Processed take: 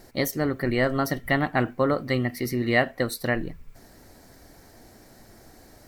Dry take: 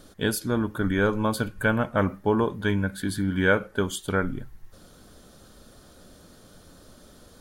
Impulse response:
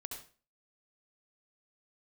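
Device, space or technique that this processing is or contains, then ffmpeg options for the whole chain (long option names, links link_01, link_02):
nightcore: -af "asetrate=55566,aresample=44100"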